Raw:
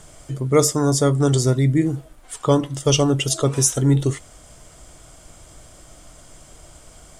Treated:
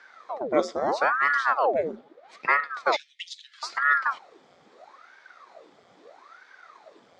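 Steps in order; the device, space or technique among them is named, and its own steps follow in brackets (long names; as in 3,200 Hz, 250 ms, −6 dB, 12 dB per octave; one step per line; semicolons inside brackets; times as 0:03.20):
0:02.96–0:03.63: Chebyshev high-pass filter 2,000 Hz, order 8
voice changer toy (ring modulator whose carrier an LFO sweeps 830 Hz, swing 90%, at 0.77 Hz; loudspeaker in its box 440–3,800 Hz, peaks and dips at 930 Hz −5 dB, 1,600 Hz −4 dB, 2,800 Hz −10 dB)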